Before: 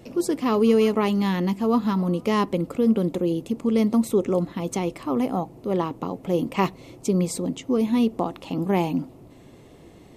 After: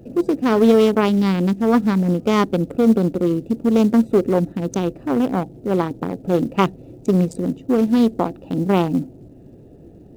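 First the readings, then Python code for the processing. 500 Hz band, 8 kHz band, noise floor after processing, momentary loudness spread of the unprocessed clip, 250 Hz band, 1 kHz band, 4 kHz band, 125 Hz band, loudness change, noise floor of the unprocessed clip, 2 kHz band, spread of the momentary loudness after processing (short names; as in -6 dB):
+5.0 dB, n/a, -44 dBFS, 8 LU, +5.0 dB, +3.5 dB, +3.0 dB, +5.5 dB, +5.0 dB, -48 dBFS, +5.0 dB, 8 LU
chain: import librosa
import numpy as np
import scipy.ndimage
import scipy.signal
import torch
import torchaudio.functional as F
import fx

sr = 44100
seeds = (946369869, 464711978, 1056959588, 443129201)

y = fx.wiener(x, sr, points=41)
y = fx.quant_float(y, sr, bits=4)
y = fx.doppler_dist(y, sr, depth_ms=0.21)
y = F.gain(torch.from_numpy(y), 6.0).numpy()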